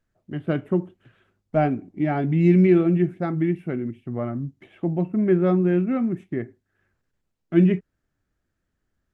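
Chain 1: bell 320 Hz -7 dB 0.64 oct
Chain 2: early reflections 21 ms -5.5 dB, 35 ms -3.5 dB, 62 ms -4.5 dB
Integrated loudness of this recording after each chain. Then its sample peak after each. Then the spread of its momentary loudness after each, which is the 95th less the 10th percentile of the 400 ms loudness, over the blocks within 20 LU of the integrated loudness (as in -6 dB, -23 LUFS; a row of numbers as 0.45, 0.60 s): -25.0, -19.5 LUFS; -10.0, -1.5 dBFS; 14, 14 LU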